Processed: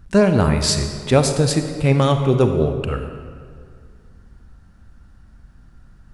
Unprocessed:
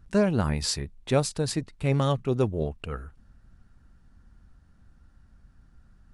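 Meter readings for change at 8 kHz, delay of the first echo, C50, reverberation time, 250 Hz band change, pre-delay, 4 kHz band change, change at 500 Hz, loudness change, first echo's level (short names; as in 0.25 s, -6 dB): +9.0 dB, none, 7.0 dB, 2.1 s, +9.0 dB, 33 ms, +9.0 dB, +9.5 dB, +9.5 dB, none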